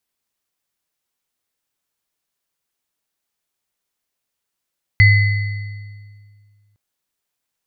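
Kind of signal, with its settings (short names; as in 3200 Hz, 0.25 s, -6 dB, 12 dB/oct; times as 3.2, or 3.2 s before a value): sine partials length 1.76 s, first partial 103 Hz, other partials 2030/4430 Hz, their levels -2/-19 dB, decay 2.06 s, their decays 1.41/1.65 s, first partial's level -7 dB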